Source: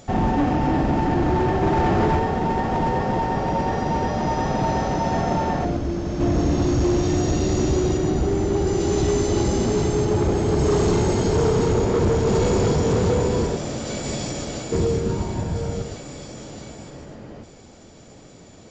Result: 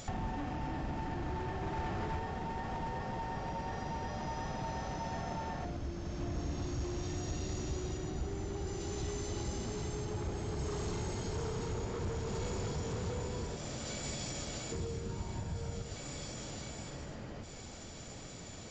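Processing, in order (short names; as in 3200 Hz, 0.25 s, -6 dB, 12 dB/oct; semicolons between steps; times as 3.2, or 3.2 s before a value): compressor 3:1, threshold -40 dBFS, peak gain reduction 16.5 dB; bell 350 Hz -7.5 dB 2.7 oct; gain +2.5 dB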